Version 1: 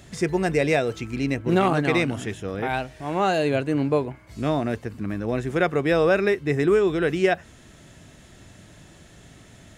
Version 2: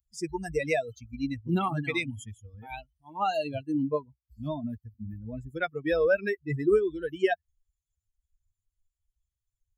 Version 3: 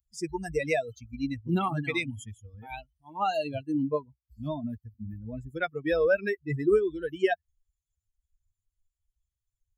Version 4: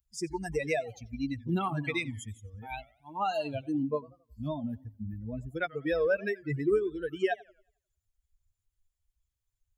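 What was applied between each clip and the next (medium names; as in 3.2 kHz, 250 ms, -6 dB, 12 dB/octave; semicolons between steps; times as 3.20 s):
expander on every frequency bin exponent 3; band-stop 4.6 kHz, Q 18
no audible change
in parallel at +1.5 dB: compression, threshold -35 dBFS, peak gain reduction 16 dB; on the sum: modulated delay 90 ms, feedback 37%, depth 211 cents, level -22 dB; trim -5.5 dB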